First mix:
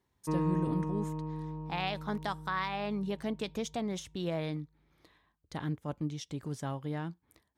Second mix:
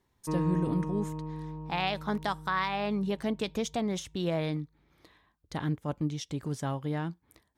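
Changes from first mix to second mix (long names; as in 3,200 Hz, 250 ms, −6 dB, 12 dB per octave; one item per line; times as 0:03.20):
speech +4.0 dB
master: remove high-pass filter 41 Hz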